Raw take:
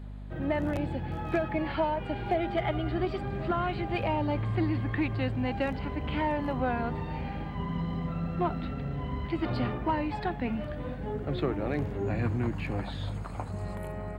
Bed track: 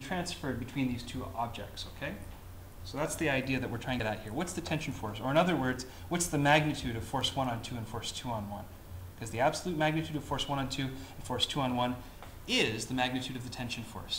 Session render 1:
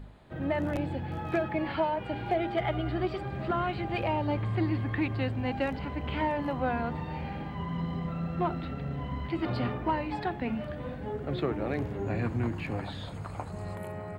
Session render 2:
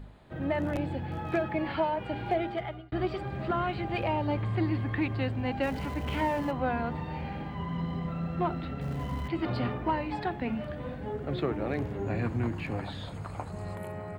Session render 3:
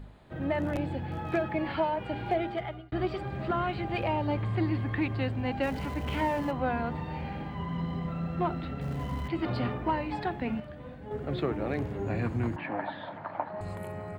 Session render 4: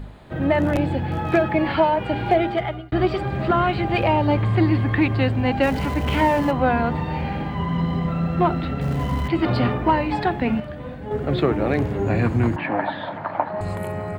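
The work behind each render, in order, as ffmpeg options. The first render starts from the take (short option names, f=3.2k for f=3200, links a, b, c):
-af "bandreject=f=50:t=h:w=4,bandreject=f=100:t=h:w=4,bandreject=f=150:t=h:w=4,bandreject=f=200:t=h:w=4,bandreject=f=250:t=h:w=4,bandreject=f=300:t=h:w=4,bandreject=f=350:t=h:w=4,bandreject=f=400:t=h:w=4"
-filter_complex "[0:a]asettb=1/sr,asplit=3[a][b][c];[a]atrim=end=5.634[d];[b]atrim=start=5.63:end=6.51,asetpts=PTS-STARTPTS,afade=t=in:d=0.004:c=qsin,afade=t=out:st=0.876:d=0.004:c=qsin,aeval=exprs='val(0)+0.5*0.00794*sgn(val(0))':c=same[e];[c]atrim=start=6.506[f];[d][e]acrossfade=d=0.004:c1=hsin:c2=qsin[g];[g][f]acrossfade=d=0.004:c1=qsin:c2=hsin,asettb=1/sr,asplit=3[h][i][j];[h]atrim=end=8.814[k];[i]atrim=start=8.81:end=9.28,asetpts=PTS-STARTPTS,afade=t=in:d=0.004:c=qsin,afade=t=out:st=0.466:d=0.004:c=qsin,aeval=exprs='val(0)+0.5*0.00708*sgn(val(0))':c=same[l];[j]atrim=start=9.276[m];[k][l]acrossfade=d=0.004:c1=hsin:c2=qsin[n];[n][m]acrossfade=d=0.004:c1=qsin:c2=hsin,asplit=2[o][p];[o]atrim=end=2.92,asetpts=PTS-STARTPTS,afade=t=out:st=2.37:d=0.55[q];[p]atrim=start=2.92,asetpts=PTS-STARTPTS,afade=t=in:d=0.004:c=hsin[r];[q][r]concat=n=2:v=0:a=1"
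-filter_complex "[0:a]asettb=1/sr,asplit=3[a][b][c];[a]atrim=end=12.564[d];[b]atrim=start=12.56:end=13.61,asetpts=PTS-STARTPTS,afade=t=in:d=0.004:c=qsin,afade=t=out:st=1.046:d=0.004:c=qsin,highpass=240,equalizer=f=300:t=q:w=4:g=4,equalizer=f=440:t=q:w=4:g=-8,equalizer=f=620:t=q:w=4:g=9,equalizer=f=910:t=q:w=4:g=9,equalizer=f=1.7k:t=q:w=4:g=8,equalizer=f=2.6k:t=q:w=4:g=-4,lowpass=f=3.2k:w=0.5412,lowpass=f=3.2k:w=1.3066[e];[c]atrim=start=13.606[f];[d][e]acrossfade=d=0.004:c1=hsin:c2=qsin[g];[g][f]acrossfade=d=0.004:c1=qsin:c2=hsin,asplit=3[h][i][j];[h]atrim=end=10.602[k];[i]atrim=start=10.598:end=11.112,asetpts=PTS-STARTPTS,volume=-6.5dB[l];[j]atrim=start=11.108[m];[k][l]acrossfade=d=0.004:c1=hsin:c2=hsin[n];[n][m]acrossfade=d=0.004:c1=hsin:c2=hsin"
-af "volume=10.5dB"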